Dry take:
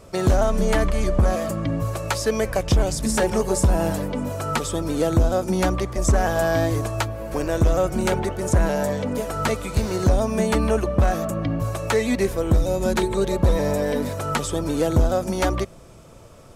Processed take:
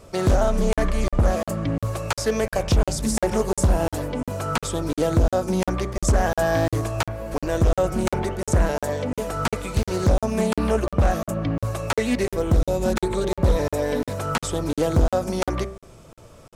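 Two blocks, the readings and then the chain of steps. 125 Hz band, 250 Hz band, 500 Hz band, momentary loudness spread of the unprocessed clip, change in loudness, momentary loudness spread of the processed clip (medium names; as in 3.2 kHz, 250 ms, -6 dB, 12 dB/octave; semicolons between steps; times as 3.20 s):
-0.5 dB, -1.0 dB, -1.0 dB, 5 LU, -1.0 dB, 6 LU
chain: de-hum 64.88 Hz, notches 37; crackling interface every 0.35 s, samples 2048, zero, from 0.73 s; loudspeaker Doppler distortion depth 0.33 ms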